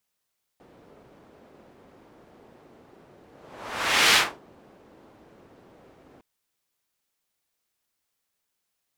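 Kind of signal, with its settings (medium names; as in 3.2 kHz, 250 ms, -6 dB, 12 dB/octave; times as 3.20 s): whoosh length 5.61 s, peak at 3.55 s, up 0.90 s, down 0.27 s, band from 410 Hz, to 2.7 kHz, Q 0.87, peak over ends 36 dB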